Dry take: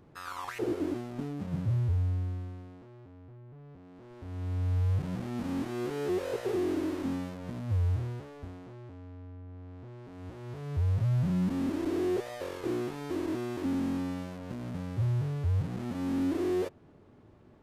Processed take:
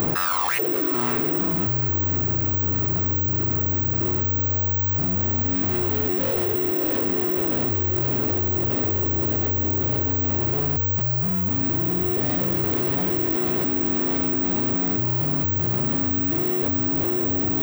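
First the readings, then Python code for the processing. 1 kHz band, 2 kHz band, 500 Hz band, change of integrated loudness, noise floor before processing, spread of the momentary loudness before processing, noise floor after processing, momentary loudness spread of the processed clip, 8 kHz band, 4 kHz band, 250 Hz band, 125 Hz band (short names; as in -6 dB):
+12.0 dB, +13.0 dB, +8.0 dB, +11.5 dB, -56 dBFS, 18 LU, -24 dBFS, 0 LU, +13.0 dB, +12.0 dB, +7.5 dB, +6.0 dB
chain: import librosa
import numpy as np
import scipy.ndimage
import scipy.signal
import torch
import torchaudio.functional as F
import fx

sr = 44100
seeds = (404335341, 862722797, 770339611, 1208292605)

p1 = fx.low_shelf(x, sr, hz=160.0, db=-5.0)
p2 = fx.echo_diffused(p1, sr, ms=644, feedback_pct=70, wet_db=-3.5)
p3 = (np.kron(p2[::2], np.eye(2)[0]) * 2)[:len(p2)]
p4 = 10.0 ** (-30.5 / 20.0) * (np.abs((p3 / 10.0 ** (-30.5 / 20.0) + 3.0) % 4.0 - 2.0) - 1.0)
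p5 = p3 + (p4 * librosa.db_to_amplitude(-4.0))
y = fx.env_flatten(p5, sr, amount_pct=100)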